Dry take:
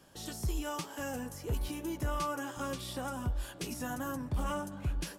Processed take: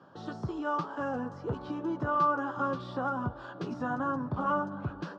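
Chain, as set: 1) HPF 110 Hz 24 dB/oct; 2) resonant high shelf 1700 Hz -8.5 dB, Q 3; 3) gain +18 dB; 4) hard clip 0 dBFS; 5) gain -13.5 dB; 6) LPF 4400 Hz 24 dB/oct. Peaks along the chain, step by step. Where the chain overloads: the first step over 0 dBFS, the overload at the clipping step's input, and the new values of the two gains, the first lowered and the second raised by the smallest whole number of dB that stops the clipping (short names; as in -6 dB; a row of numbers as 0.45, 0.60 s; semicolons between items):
-25.0, -22.0, -4.0, -4.0, -17.5, -17.5 dBFS; no overload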